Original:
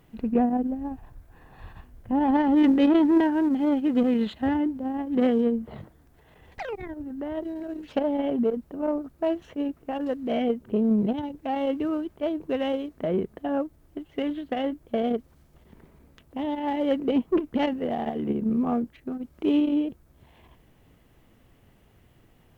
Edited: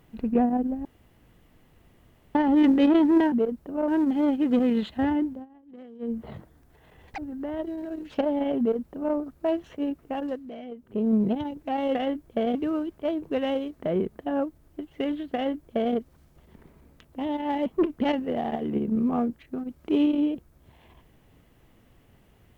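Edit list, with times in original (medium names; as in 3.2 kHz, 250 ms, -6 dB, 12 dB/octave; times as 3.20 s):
0.85–2.35 s: room tone
4.73–5.60 s: dip -23.5 dB, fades 0.17 s
6.62–6.96 s: delete
8.37–8.93 s: copy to 3.32 s
9.95–10.91 s: dip -14.5 dB, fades 0.38 s
14.52–15.12 s: copy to 11.73 s
16.84–17.20 s: delete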